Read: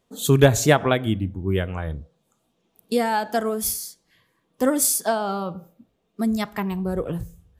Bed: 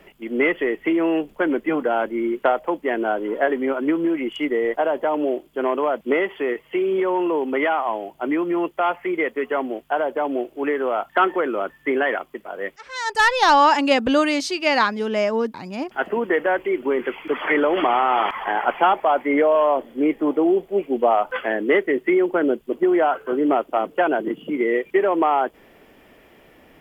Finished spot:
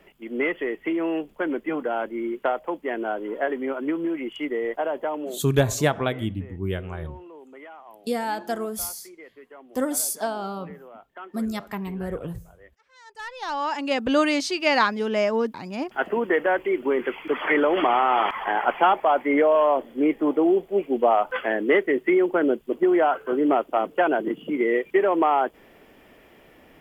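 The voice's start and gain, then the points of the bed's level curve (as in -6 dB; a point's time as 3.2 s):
5.15 s, -5.0 dB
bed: 5.06 s -5.5 dB
5.81 s -23 dB
13.09 s -23 dB
14.21 s -1.5 dB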